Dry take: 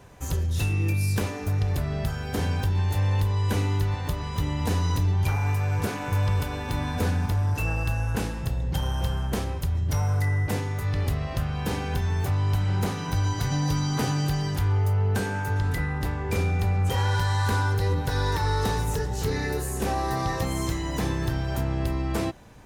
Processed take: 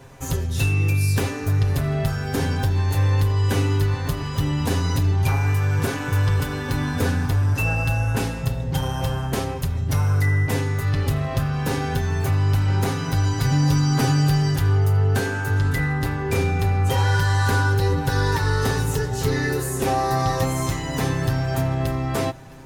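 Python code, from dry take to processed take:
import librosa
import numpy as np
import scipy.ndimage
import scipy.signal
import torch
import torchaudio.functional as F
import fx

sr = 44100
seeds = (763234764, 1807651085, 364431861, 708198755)

p1 = x + 0.65 * np.pad(x, (int(7.5 * sr / 1000.0), 0))[:len(x)]
p2 = p1 + fx.echo_feedback(p1, sr, ms=663, feedback_pct=41, wet_db=-22.5, dry=0)
y = p2 * 10.0 ** (3.5 / 20.0)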